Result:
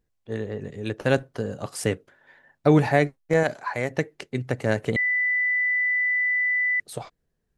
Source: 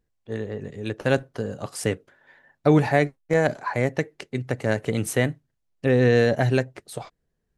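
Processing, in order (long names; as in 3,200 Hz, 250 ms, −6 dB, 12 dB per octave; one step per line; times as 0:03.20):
0:03.43–0:03.91: low-shelf EQ 490 Hz −8 dB
0:04.96–0:06.80: beep over 1,990 Hz −20 dBFS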